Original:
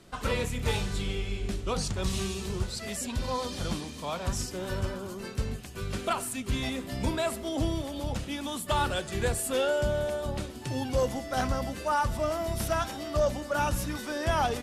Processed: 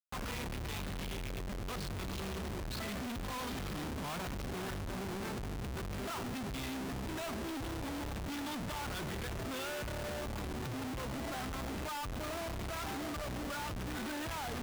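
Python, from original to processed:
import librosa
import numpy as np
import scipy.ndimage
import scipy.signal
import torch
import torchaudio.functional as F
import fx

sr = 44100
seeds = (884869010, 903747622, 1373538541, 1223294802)

y = scipy.signal.sosfilt(scipy.signal.butter(4, 4200.0, 'lowpass', fs=sr, output='sos'), x)
y = fx.peak_eq(y, sr, hz=540.0, db=-12.0, octaves=0.45)
y = fx.schmitt(y, sr, flips_db=-44.5)
y = y * 10.0 ** (-7.0 / 20.0)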